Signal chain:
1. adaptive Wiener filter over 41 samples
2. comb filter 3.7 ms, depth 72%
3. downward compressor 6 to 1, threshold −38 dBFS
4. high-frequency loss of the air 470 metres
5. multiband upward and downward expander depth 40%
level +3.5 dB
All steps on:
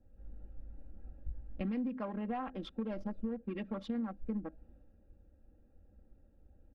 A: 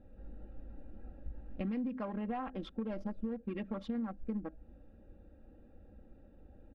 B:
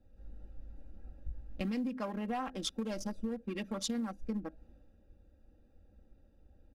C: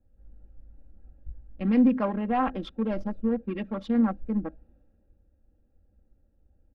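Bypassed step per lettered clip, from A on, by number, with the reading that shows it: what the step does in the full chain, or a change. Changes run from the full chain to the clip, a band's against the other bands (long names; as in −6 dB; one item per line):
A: 5, 4 kHz band −2.0 dB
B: 4, 4 kHz band +11.0 dB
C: 3, average gain reduction 5.0 dB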